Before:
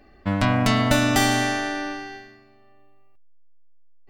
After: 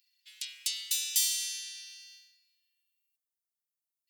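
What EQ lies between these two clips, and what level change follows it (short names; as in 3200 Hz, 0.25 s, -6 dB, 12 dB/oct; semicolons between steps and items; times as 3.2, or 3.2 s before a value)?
inverse Chebyshev high-pass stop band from 670 Hz, stop band 70 dB; differentiator; +1.5 dB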